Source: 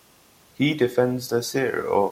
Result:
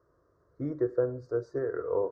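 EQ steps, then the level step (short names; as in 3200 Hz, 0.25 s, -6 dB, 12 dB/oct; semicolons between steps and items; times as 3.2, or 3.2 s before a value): Butterworth band-stop 2700 Hz, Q 0.8; tape spacing loss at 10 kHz 45 dB; fixed phaser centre 810 Hz, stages 6; -4.0 dB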